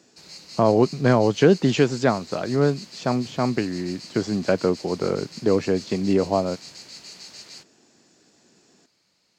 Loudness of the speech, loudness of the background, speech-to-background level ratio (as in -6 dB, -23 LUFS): -22.5 LUFS, -39.5 LUFS, 17.0 dB